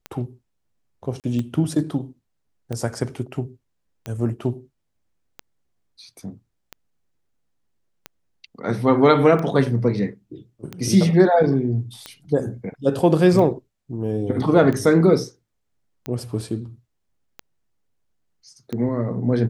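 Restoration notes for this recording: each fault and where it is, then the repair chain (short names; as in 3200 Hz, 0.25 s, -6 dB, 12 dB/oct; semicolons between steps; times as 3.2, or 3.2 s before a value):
tick 45 rpm -16 dBFS
1.2–1.24 gap 38 ms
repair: de-click; interpolate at 1.2, 38 ms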